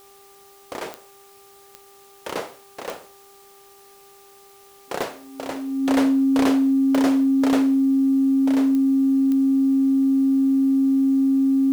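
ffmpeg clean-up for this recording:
ffmpeg -i in.wav -af "adeclick=threshold=4,bandreject=frequency=396.5:width_type=h:width=4,bandreject=frequency=793:width_type=h:width=4,bandreject=frequency=1189.5:width_type=h:width=4,bandreject=frequency=270:width=30,agate=range=-21dB:threshold=-42dB" out.wav

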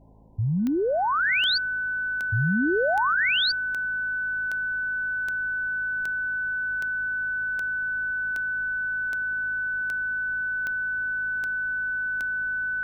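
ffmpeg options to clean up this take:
ffmpeg -i in.wav -af "adeclick=threshold=4,bandreject=frequency=53.8:width_type=h:width=4,bandreject=frequency=107.6:width_type=h:width=4,bandreject=frequency=161.4:width_type=h:width=4,bandreject=frequency=215.2:width_type=h:width=4,bandreject=frequency=269:width_type=h:width=4,bandreject=frequency=1500:width=30,agate=range=-21dB:threshold=-20dB" out.wav

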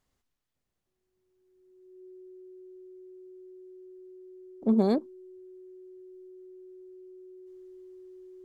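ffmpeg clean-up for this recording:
ffmpeg -i in.wav -af "bandreject=frequency=370:width=30" out.wav

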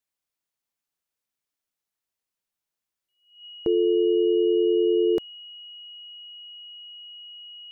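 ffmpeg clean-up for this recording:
ffmpeg -i in.wav -af "bandreject=frequency=2900:width=30" out.wav

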